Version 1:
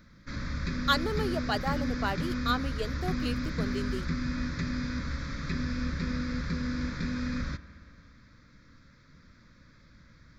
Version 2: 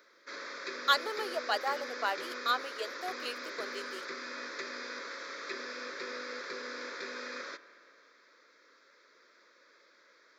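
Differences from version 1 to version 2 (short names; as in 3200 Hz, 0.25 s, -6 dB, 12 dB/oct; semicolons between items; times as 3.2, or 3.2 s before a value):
background: add bell 390 Hz +13.5 dB 0.64 oct; master: add HPF 490 Hz 24 dB/oct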